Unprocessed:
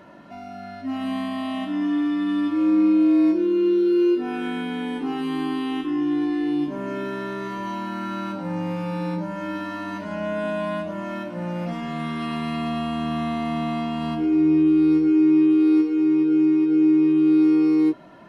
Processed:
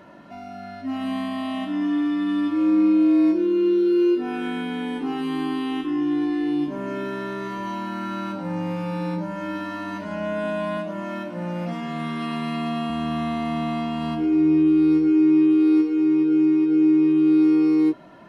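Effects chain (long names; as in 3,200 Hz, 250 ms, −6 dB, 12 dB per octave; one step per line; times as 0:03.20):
0:10.77–0:12.90: high-pass filter 120 Hz 24 dB per octave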